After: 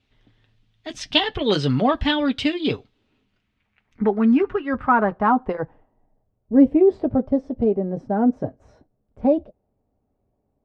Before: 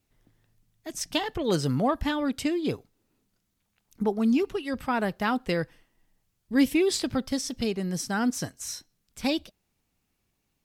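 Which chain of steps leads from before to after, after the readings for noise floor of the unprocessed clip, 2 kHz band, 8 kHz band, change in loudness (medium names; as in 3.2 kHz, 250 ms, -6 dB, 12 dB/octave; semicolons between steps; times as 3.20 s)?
-77 dBFS, +4.5 dB, under -10 dB, +7.0 dB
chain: low-pass sweep 3.4 kHz -> 620 Hz, 2.96–6.30 s; comb of notches 170 Hz; trim +6.5 dB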